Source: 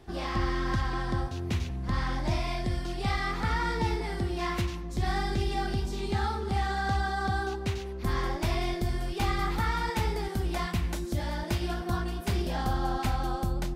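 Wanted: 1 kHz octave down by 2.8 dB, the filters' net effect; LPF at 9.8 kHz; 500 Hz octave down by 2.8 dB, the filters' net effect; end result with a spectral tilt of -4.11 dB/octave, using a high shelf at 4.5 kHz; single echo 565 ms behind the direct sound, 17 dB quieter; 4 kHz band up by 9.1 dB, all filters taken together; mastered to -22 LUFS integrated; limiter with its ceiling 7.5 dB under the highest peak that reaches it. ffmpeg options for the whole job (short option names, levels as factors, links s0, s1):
-af "lowpass=9800,equalizer=f=500:t=o:g=-4,equalizer=f=1000:t=o:g=-3,equalizer=f=4000:t=o:g=7,highshelf=f=4500:g=8.5,alimiter=limit=0.0794:level=0:latency=1,aecho=1:1:565:0.141,volume=3.16"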